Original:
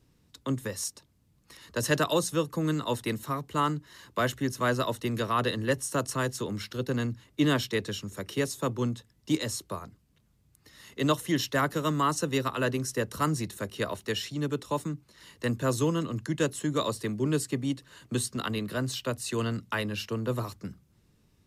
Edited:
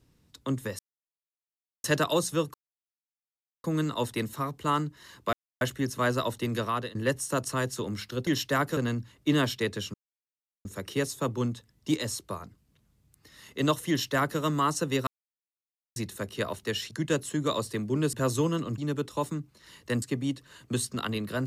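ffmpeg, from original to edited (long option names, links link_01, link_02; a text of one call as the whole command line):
ffmpeg -i in.wav -filter_complex "[0:a]asplit=15[link_01][link_02][link_03][link_04][link_05][link_06][link_07][link_08][link_09][link_10][link_11][link_12][link_13][link_14][link_15];[link_01]atrim=end=0.79,asetpts=PTS-STARTPTS,afade=type=out:start_time=0.786:duration=0.004:curve=hsin[link_16];[link_02]atrim=start=0.79:end=1.84,asetpts=PTS-STARTPTS,volume=0[link_17];[link_03]atrim=start=1.84:end=2.54,asetpts=PTS-STARTPTS,afade=type=in:duration=0.004:curve=hsin,afade=type=out:start_time=0.696:duration=0.004:curve=hsin,apad=pad_dur=1.1[link_18];[link_04]atrim=start=2.54:end=4.23,asetpts=PTS-STARTPTS,afade=type=in:duration=0.004:curve=hsin,afade=type=out:start_time=1.686:duration=0.004:curve=hsin,apad=pad_dur=0.28[link_19];[link_05]atrim=start=4.23:end=5.57,asetpts=PTS-STARTPTS,afade=type=in:duration=0.004:curve=hsin,afade=type=out:start_time=1.03:duration=0.31:silence=0.125893[link_20];[link_06]atrim=start=5.57:end=6.892,asetpts=PTS-STARTPTS,afade=type=in:duration=0.004:curve=hsin:silence=0.125893[link_21];[link_07]atrim=start=11.298:end=11.802[link_22];[link_08]atrim=start=6.888:end=8.06,asetpts=PTS-STARTPTS,afade=type=out:start_time=1.168:duration=0.004:curve=hsin,apad=pad_dur=0.71[link_23];[link_09]atrim=start=8.06:end=12.48,asetpts=PTS-STARTPTS,afade=type=in:duration=0.004:curve=hsin,afade=type=out:start_time=4.416:duration=0.004:curve=hsin[link_24];[link_10]atrim=start=12.48:end=13.37,asetpts=PTS-STARTPTS,volume=0[link_25];[link_11]atrim=start=13.37:end=14.322,asetpts=PTS-STARTPTS,afade=type=in:duration=0.004:curve=hsin[link_26];[link_12]atrim=start=16.208:end=17.432[link_27];[link_13]atrim=start=15.558:end=16.212[link_28];[link_14]atrim=start=14.318:end=15.562[link_29];[link_15]atrim=start=17.428[link_30];[link_16][link_17][link_18][link_19][link_20][link_21]concat=n=6:v=0:a=1[link_31];[link_31][link_22]acrossfade=duration=0.004:curve1=hsin:curve2=hsin[link_32];[link_23][link_24][link_25][link_26]concat=n=4:v=0:a=1[link_33];[link_32][link_33]acrossfade=duration=0.004:curve1=hsin:curve2=hsin[link_34];[link_34][link_27]acrossfade=duration=0.004:curve1=hsin:curve2=hsin[link_35];[link_35][link_28]acrossfade=duration=0.004:curve1=hsin:curve2=hsin[link_36];[link_36][link_29]acrossfade=duration=0.004:curve1=hsin:curve2=hsin[link_37];[link_37][link_30]acrossfade=duration=0.004:curve1=hsin:curve2=hsin" out.wav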